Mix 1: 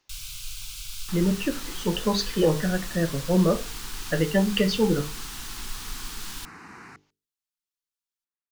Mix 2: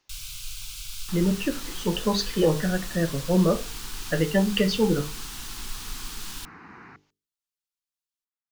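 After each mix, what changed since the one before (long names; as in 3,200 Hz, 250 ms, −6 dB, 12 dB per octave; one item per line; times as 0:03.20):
second sound: add high-frequency loss of the air 240 metres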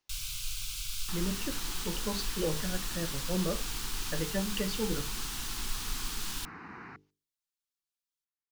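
speech −11.5 dB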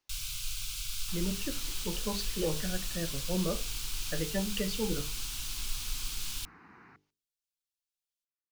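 second sound −9.5 dB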